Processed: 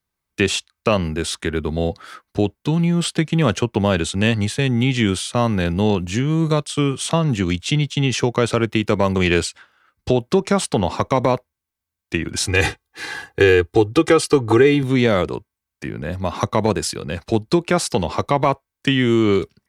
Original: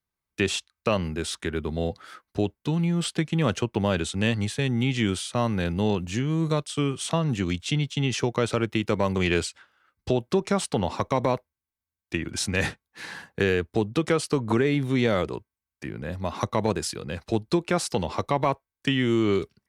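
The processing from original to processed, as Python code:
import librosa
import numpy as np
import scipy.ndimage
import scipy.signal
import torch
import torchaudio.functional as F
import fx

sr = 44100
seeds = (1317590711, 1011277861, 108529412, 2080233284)

y = fx.comb(x, sr, ms=2.5, depth=0.8, at=(12.46, 14.83))
y = y * librosa.db_to_amplitude(6.5)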